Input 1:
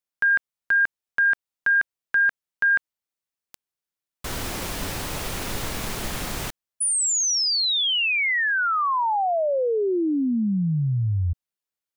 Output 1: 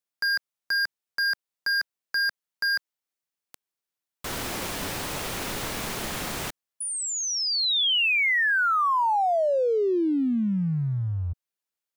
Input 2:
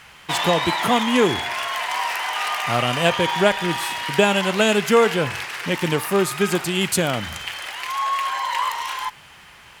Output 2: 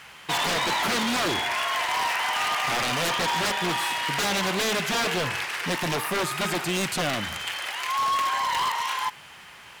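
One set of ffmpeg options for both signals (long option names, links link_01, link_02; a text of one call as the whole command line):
ffmpeg -i in.wav -filter_complex "[0:a]acrossover=split=4000[link_01][link_02];[link_02]acompressor=threshold=-31dB:ratio=4:attack=1:release=60[link_03];[link_01][link_03]amix=inputs=2:normalize=0,aeval=exprs='0.106*(abs(mod(val(0)/0.106+3,4)-2)-1)':channel_layout=same,lowshelf=frequency=96:gain=-10.5" out.wav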